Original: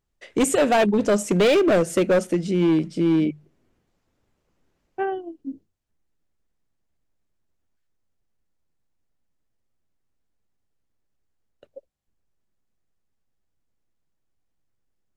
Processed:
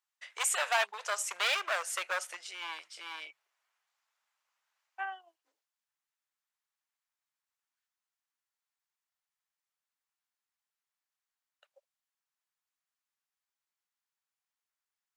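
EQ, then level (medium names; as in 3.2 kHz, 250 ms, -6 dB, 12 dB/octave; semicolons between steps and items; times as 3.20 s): inverse Chebyshev high-pass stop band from 270 Hz, stop band 60 dB; -3.0 dB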